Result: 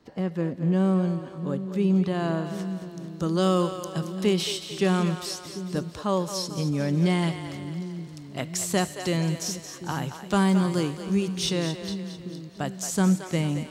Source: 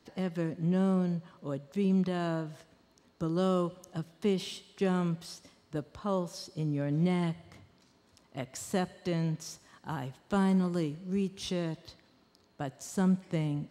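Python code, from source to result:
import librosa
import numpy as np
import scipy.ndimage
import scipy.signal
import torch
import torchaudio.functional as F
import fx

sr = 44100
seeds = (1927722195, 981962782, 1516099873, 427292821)

y = fx.high_shelf(x, sr, hz=2000.0, db=fx.steps((0.0, -8.0), (0.71, -2.0), (2.44, 7.5)))
y = fx.echo_split(y, sr, split_hz=370.0, low_ms=745, high_ms=223, feedback_pct=52, wet_db=-10)
y = y * 10.0 ** (5.5 / 20.0)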